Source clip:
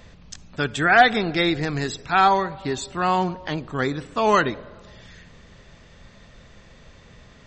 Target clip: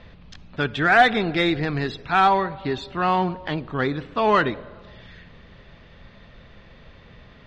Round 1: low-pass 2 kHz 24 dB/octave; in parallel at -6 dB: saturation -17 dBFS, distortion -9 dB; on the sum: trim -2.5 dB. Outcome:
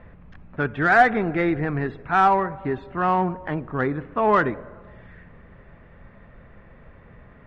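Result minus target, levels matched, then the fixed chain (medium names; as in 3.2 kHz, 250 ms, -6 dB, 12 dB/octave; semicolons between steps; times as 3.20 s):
4 kHz band -13.5 dB
low-pass 4.1 kHz 24 dB/octave; in parallel at -6 dB: saturation -17 dBFS, distortion -9 dB; on the sum: trim -2.5 dB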